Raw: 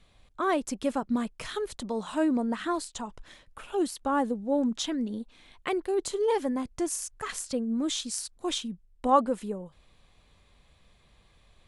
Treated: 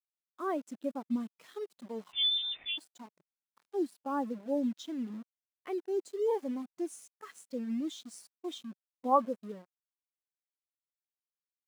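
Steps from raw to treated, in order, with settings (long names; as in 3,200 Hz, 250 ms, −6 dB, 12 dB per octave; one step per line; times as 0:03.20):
upward compression, threshold −45 dBFS
bit-depth reduction 6 bits, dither none
linear-phase brick-wall high-pass 150 Hz
0:02.12–0:02.78: voice inversion scrambler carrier 3,800 Hz
every bin expanded away from the loudest bin 1.5 to 1
level −3.5 dB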